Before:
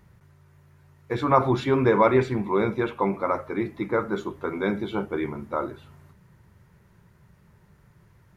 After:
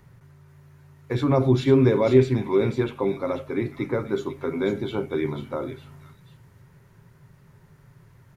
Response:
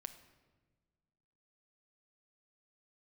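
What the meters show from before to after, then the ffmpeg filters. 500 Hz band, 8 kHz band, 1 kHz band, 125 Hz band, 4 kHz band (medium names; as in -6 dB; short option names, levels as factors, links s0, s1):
+2.0 dB, no reading, -8.5 dB, +6.0 dB, +2.5 dB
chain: -filter_complex "[0:a]acrossover=split=530|2500[s0][s1][s2];[s0]aecho=1:1:7.5:0.6[s3];[s1]acompressor=threshold=0.0112:ratio=6[s4];[s2]aecho=1:1:493:0.531[s5];[s3][s4][s5]amix=inputs=3:normalize=0,volume=1.33"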